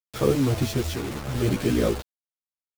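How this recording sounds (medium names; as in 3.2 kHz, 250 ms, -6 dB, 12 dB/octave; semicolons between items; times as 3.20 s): chopped level 0.74 Hz, depth 60%, duty 70%; a quantiser's noise floor 6-bit, dither none; a shimmering, thickened sound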